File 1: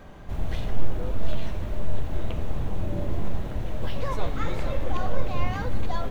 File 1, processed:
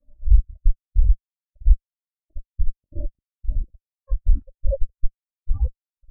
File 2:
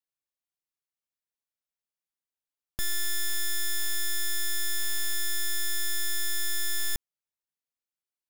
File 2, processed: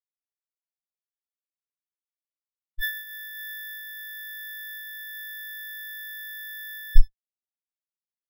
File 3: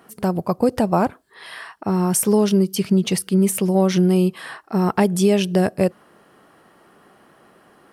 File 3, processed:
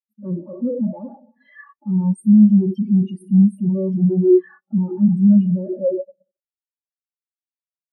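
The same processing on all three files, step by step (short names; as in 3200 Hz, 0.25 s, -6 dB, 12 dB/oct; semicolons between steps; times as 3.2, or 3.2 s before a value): comb 3.5 ms, depth 68%; two-slope reverb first 0.55 s, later 3.2 s, from -21 dB, DRR 7 dB; fuzz box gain 38 dB, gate -43 dBFS; on a send: feedback echo 79 ms, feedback 56%, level -24 dB; on the sum: spectral expander 4:1; gain +5.5 dB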